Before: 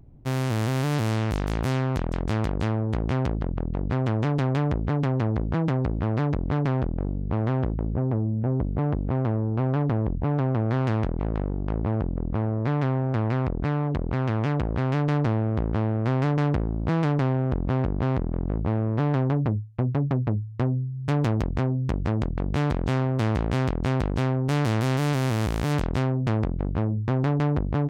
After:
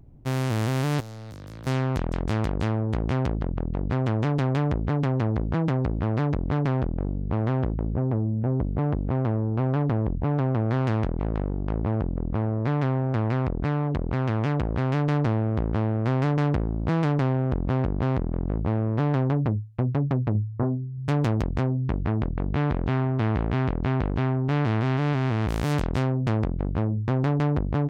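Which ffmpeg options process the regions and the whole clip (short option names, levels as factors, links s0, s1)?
-filter_complex "[0:a]asettb=1/sr,asplit=3[s0][s1][s2];[s0]atrim=end=1.004[s3];[s1]atrim=start=1:end=1.67,asetpts=PTS-STARTPTS,afade=t=in:d=0.004:c=qsin,afade=t=out:st=0.666:d=0.004:c=qsin,highpass=f=73:w=0.5412,highpass=f=73:w=1.3066,acrossover=split=170|2100[s4][s5][s6];[s4]acompressor=threshold=0.0112:ratio=4[s7];[s5]acompressor=threshold=0.00794:ratio=4[s8];[s6]acompressor=threshold=0.00355:ratio=4[s9];[s7][s8][s9]amix=inputs=3:normalize=0,asoftclip=type=hard:threshold=0.0141[s10];[s2]atrim=start=1.666[s11];[s3][s10]acrossfade=d=0.004:c1=hsin:c2=qsin[s12];[s12][s11]acrossfade=d=0.004:c1=qsin:c2=hsin,asettb=1/sr,asplit=3[s13][s14][s15];[s13]atrim=end=20.324[s16];[s14]atrim=start=20.32:end=20.98,asetpts=PTS-STARTPTS,afade=t=in:d=0.004:c=qsin,afade=t=out:st=0.656:d=0.004:c=qsin,lowpass=f=1400:w=0.5412,lowpass=f=1400:w=1.3066,asplit=2[s17][s18];[s18]adelay=28,volume=0.501[s19];[s17][s19]amix=inputs=2:normalize=0,atrim=end_sample=29106[s20];[s15]atrim=start=20.976[s21];[s16][s20]acrossfade=d=0.004:c1=hsin:c2=qsin[s22];[s22][s21]acrossfade=d=0.004:c1=qsin:c2=hsin,asettb=1/sr,asplit=3[s23][s24][s25];[s23]atrim=end=21.774[s26];[s24]atrim=start=21.77:end=25.49,asetpts=PTS-STARTPTS,afade=t=in:d=0.004:c=qsin,afade=t=out:st=3.716:d=0.004:c=qsin,lowpass=2900,bandreject=f=530:w=9.7[s27];[s25]atrim=start=25.486[s28];[s26][s27]acrossfade=d=0.004:c1=hsin:c2=qsin[s29];[s29][s28]acrossfade=d=0.004:c1=qsin:c2=hsin"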